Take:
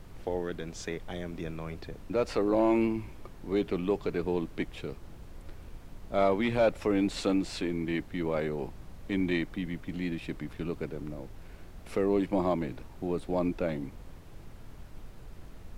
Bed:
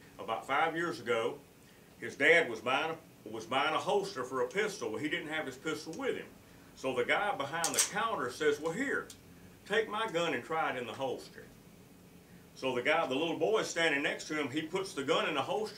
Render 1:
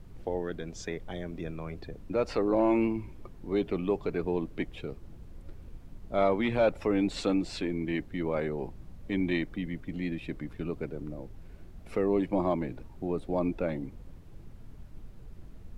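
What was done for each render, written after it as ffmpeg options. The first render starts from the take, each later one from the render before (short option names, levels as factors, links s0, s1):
-af "afftdn=nr=8:nf=-48"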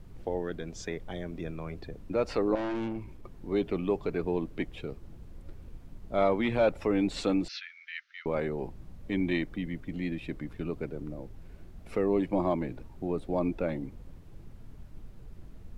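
-filter_complex "[0:a]asettb=1/sr,asplit=3[s0][s1][s2];[s0]atrim=end=2.554[s3];[s1]atrim=start=2.55:end=3.32,asetpts=PTS-STARTPTS,afade=t=in:d=0.004:c=qsin,afade=t=out:st=0.766:d=0.004:c=qsin,aeval=exprs='(tanh(31.6*val(0)+0.35)-tanh(0.35))/31.6':c=same[s4];[s2]atrim=start=3.316[s5];[s3][s4]acrossfade=d=0.004:c1=hsin:c2=qsin[s6];[s6][s5]acrossfade=d=0.004:c1=qsin:c2=hsin,asettb=1/sr,asplit=3[s7][s8][s9];[s7]atrim=end=7.484[s10];[s8]atrim=start=7.48:end=8.26,asetpts=PTS-STARTPTS,afade=t=in:d=0.004:c=qsin,afade=t=out:st=0.776:d=0.004:c=qsin,asuperpass=centerf=2900:order=20:qfactor=0.59[s11];[s9]atrim=start=8.256[s12];[s10][s11]acrossfade=d=0.004:c1=hsin:c2=qsin[s13];[s13][s12]acrossfade=d=0.004:c1=qsin:c2=hsin"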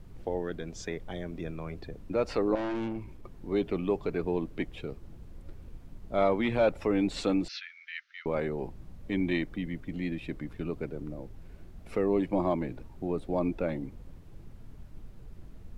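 -af anull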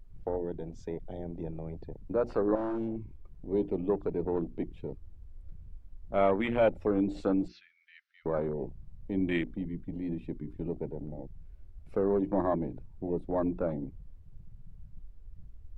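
-af "bandreject=f=60:t=h:w=6,bandreject=f=120:t=h:w=6,bandreject=f=180:t=h:w=6,bandreject=f=240:t=h:w=6,bandreject=f=300:t=h:w=6,bandreject=f=360:t=h:w=6,afwtdn=0.0178"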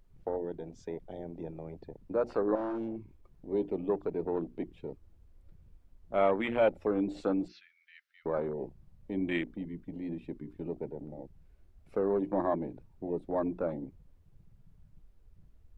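-af "lowshelf=f=140:g=-12"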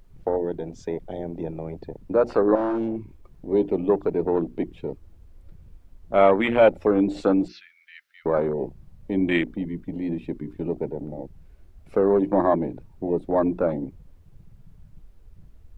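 -af "volume=3.16"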